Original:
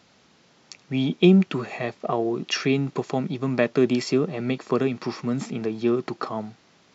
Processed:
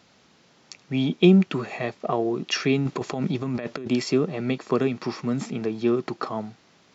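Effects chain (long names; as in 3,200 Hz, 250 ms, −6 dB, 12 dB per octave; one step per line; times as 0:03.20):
0:02.85–0:03.88: compressor whose output falls as the input rises −28 dBFS, ratio −1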